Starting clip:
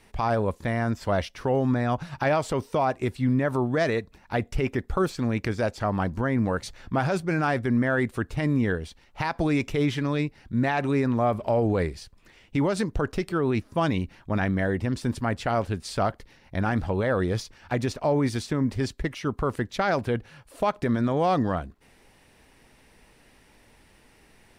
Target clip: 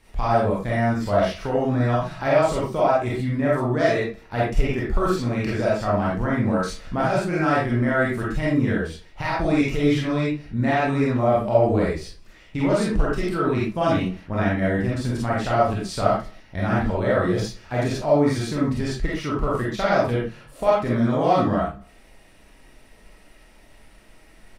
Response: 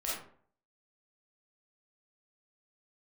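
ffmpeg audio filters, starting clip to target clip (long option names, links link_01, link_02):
-filter_complex "[0:a]lowshelf=frequency=180:gain=4,aecho=1:1:61|122|183|244:0.0841|0.0488|0.0283|0.0164[link_01];[1:a]atrim=start_sample=2205,atrim=end_sample=6174[link_02];[link_01][link_02]afir=irnorm=-1:irlink=0"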